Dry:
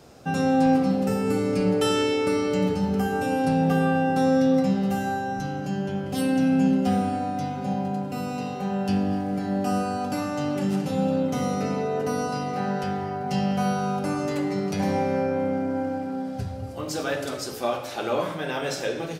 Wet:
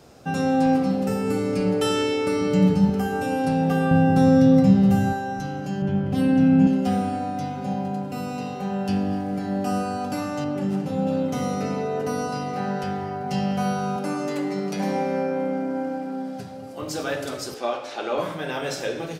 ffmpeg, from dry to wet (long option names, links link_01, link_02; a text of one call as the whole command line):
ffmpeg -i in.wav -filter_complex "[0:a]asettb=1/sr,asplit=3[link_01][link_02][link_03];[link_01]atrim=end=2.404[link_04];[link_02]atrim=start=2.4:end=2.9,asetpts=PTS-STARTPTS,afade=type=in:duration=0.004:curve=qsin,afade=type=out:start_time=0.496:duration=0.004:curve=qsin,equalizer=frequency=160:width=1.5:gain=10.5[link_05];[link_03]atrim=start=2.896[link_06];[link_04][link_05]acrossfade=duration=0.004:curve1=hsin:curve2=qsin[link_07];[link_07][link_06]acrossfade=duration=0.004:curve1=qsin:curve2=hsin,asettb=1/sr,asplit=3[link_08][link_09][link_10];[link_08]atrim=end=3.914[link_11];[link_09]atrim=start=3.91:end=5.13,asetpts=PTS-STARTPTS,afade=type=in:duration=0.004:curve=qsin,afade=type=out:start_time=1.216:duration=0.004:curve=qsin,equalizer=frequency=110:width_type=o:width=1.8:gain=15[link_12];[link_10]atrim=start=5.126[link_13];[link_11][link_12]acrossfade=duration=0.004:curve1=hsin:curve2=qsin[link_14];[link_14][link_13]acrossfade=duration=0.004:curve1=qsin:curve2=hsin,asettb=1/sr,asplit=3[link_15][link_16][link_17];[link_15]atrim=end=5.824[link_18];[link_16]atrim=start=5.82:end=6.67,asetpts=PTS-STARTPTS,afade=type=in:duration=0.004:curve=qsin,afade=type=out:start_time=0.846:duration=0.004:curve=qsin,bass=frequency=250:gain=9,treble=frequency=4000:gain=-10[link_19];[link_17]atrim=start=6.666[link_20];[link_18][link_19]acrossfade=duration=0.004:curve1=hsin:curve2=qsin[link_21];[link_21][link_20]acrossfade=duration=0.004:curve1=qsin:curve2=hsin,asettb=1/sr,asplit=3[link_22][link_23][link_24];[link_22]atrim=end=10.444[link_25];[link_23]atrim=start=10.44:end=11.07,asetpts=PTS-STARTPTS,afade=type=in:duration=0.004:curve=qsin,afade=type=out:start_time=0.626:duration=0.004:curve=qsin,highshelf=frequency=2100:gain=-8[link_26];[link_24]atrim=start=11.066[link_27];[link_25][link_26]acrossfade=duration=0.004:curve1=hsin:curve2=qsin[link_28];[link_28][link_27]acrossfade=duration=0.004:curve1=qsin:curve2=hsin,asettb=1/sr,asplit=3[link_29][link_30][link_31];[link_29]atrim=end=13.964[link_32];[link_30]atrim=start=13.96:end=16.82,asetpts=PTS-STARTPTS,afade=type=in:duration=0.004:curve=qsin,afade=type=out:start_time=2.856:duration=0.004:curve=qsin,highpass=frequency=160:width=0.5412,highpass=frequency=160:width=1.3066[link_33];[link_31]atrim=start=16.816[link_34];[link_32][link_33]acrossfade=duration=0.004:curve1=hsin:curve2=qsin[link_35];[link_35][link_34]acrossfade=duration=0.004:curve1=qsin:curve2=hsin,asettb=1/sr,asplit=3[link_36][link_37][link_38];[link_36]atrim=end=17.544[link_39];[link_37]atrim=start=17.54:end=18.18,asetpts=PTS-STARTPTS,afade=type=in:duration=0.004:curve=qsin,afade=type=out:start_time=0.636:duration=0.004:curve=qsin,highpass=260,lowpass=6200[link_40];[link_38]atrim=start=18.176[link_41];[link_39][link_40]acrossfade=duration=0.004:curve1=hsin:curve2=qsin[link_42];[link_42][link_41]acrossfade=duration=0.004:curve1=qsin:curve2=hsin" out.wav